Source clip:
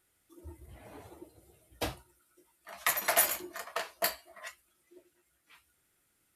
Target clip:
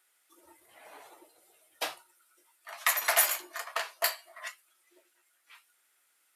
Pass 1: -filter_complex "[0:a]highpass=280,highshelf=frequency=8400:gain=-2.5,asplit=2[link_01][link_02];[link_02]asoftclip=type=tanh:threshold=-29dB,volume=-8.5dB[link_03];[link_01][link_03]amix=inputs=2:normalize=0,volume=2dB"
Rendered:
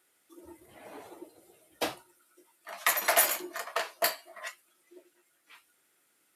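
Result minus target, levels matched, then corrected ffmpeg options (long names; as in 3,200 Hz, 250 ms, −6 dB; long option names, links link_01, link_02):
250 Hz band +13.0 dB
-filter_complex "[0:a]highpass=780,highshelf=frequency=8400:gain=-2.5,asplit=2[link_01][link_02];[link_02]asoftclip=type=tanh:threshold=-29dB,volume=-8.5dB[link_03];[link_01][link_03]amix=inputs=2:normalize=0,volume=2dB"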